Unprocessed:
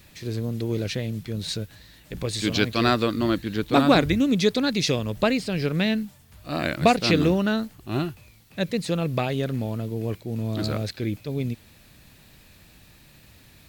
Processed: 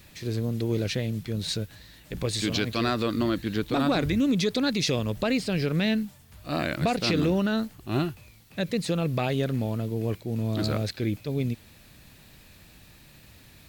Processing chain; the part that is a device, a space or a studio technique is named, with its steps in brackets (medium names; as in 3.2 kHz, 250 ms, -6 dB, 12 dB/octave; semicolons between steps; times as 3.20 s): soft clipper into limiter (saturation -7.5 dBFS, distortion -22 dB; peak limiter -16 dBFS, peak gain reduction 7.5 dB)